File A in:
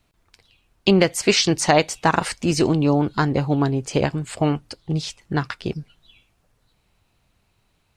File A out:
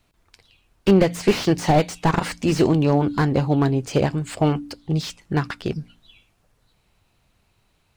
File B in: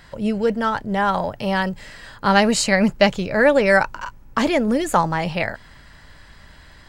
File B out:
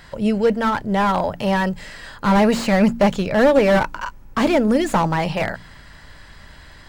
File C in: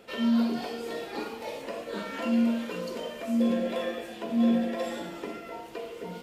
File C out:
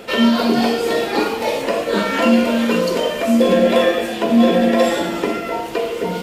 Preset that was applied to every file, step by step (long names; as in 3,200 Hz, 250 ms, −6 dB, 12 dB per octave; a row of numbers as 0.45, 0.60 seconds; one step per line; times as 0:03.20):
hum removal 57.97 Hz, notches 5
slew-rate limiting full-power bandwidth 130 Hz
normalise the peak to −3 dBFS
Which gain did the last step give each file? +1.5, +3.0, +17.0 decibels